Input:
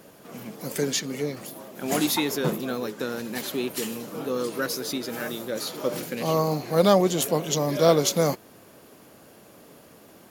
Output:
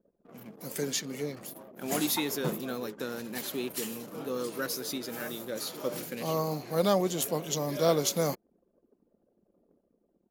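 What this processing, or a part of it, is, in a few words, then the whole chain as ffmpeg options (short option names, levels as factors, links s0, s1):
voice memo with heavy noise removal: -af "anlmdn=0.158,dynaudnorm=f=210:g=7:m=1.41,highshelf=f=8600:g=5.5,volume=0.355"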